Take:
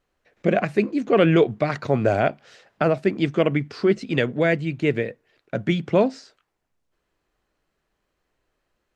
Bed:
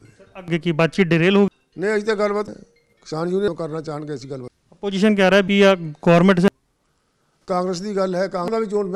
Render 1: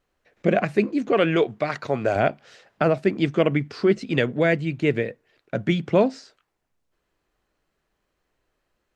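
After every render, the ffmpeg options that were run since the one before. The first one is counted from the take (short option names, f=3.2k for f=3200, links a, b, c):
-filter_complex "[0:a]asettb=1/sr,asplit=3[a][b][c];[a]atrim=end=1.124[d];[b]atrim=start=1.12:end=2.16,asetpts=PTS-STARTPTS,afade=t=in:d=0.004:c=qsin,afade=t=out:st=1.036:d=0.004:c=qsin,lowshelf=f=320:g=-9[e];[c]atrim=start=2.156[f];[d][e]acrossfade=d=0.004:c1=hsin:c2=qsin[g];[g][f]acrossfade=d=0.004:c1=qsin:c2=hsin"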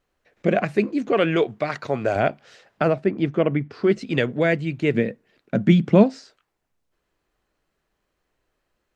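-filter_complex "[0:a]asettb=1/sr,asplit=3[a][b][c];[a]atrim=end=2.944[d];[b]atrim=start=2.94:end=3.84,asetpts=PTS-STARTPTS,afade=t=in:d=0.004:c=qsin,afade=t=out:st=0.896:d=0.004:c=qsin,lowpass=f=1.6k:p=1[e];[c]atrim=start=3.836[f];[d][e]acrossfade=d=0.004:c1=hsin:c2=qsin[g];[g][f]acrossfade=d=0.004:c1=qsin:c2=hsin,asettb=1/sr,asplit=3[h][i][j];[h]atrim=end=4.944[k];[i]atrim=start=4.94:end=6.04,asetpts=PTS-STARTPTS,afade=t=in:d=0.004:c=qsin,afade=t=out:st=1.096:d=0.004:c=qsin,equalizer=f=210:w=1.5:g=11[l];[j]atrim=start=6.036[m];[k][l]acrossfade=d=0.004:c1=hsin:c2=qsin[n];[n][m]acrossfade=d=0.004:c1=qsin:c2=hsin"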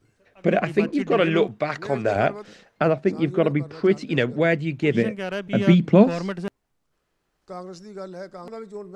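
-filter_complex "[1:a]volume=-15dB[a];[0:a][a]amix=inputs=2:normalize=0"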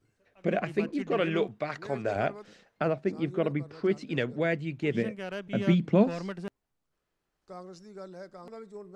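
-af "volume=-8dB"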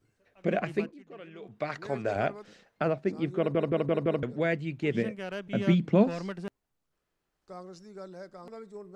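-filter_complex "[0:a]asplit=8[a][b][c][d][e][f][g][h];[a]atrim=end=0.95,asetpts=PTS-STARTPTS,afade=t=out:st=0.77:d=0.18:silence=0.112202[i];[b]atrim=start=0.95:end=1.42,asetpts=PTS-STARTPTS,volume=-19dB[j];[c]atrim=start=1.42:end=3.552,asetpts=PTS-STARTPTS,afade=t=in:d=0.18:silence=0.112202[k];[d]atrim=start=3.378:end=3.552[l];[e]atrim=start=3.378:end=3.552[m];[f]atrim=start=3.378:end=3.552[n];[g]atrim=start=3.378:end=3.552[o];[h]atrim=start=4.228[p];[i][j][k]concat=n=3:v=0:a=1[q];[q][l]acrossfade=d=0.004:c1=hsin:c2=hsin[r];[r][m]acrossfade=d=0.004:c1=hsin:c2=hsin[s];[s][n]acrossfade=d=0.004:c1=hsin:c2=hsin[t];[t][o]acrossfade=d=0.004:c1=hsin:c2=hsin[u];[u][p]acrossfade=d=0.004:c1=hsin:c2=hsin"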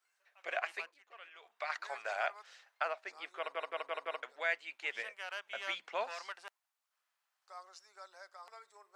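-af "highpass=f=830:w=0.5412,highpass=f=830:w=1.3066"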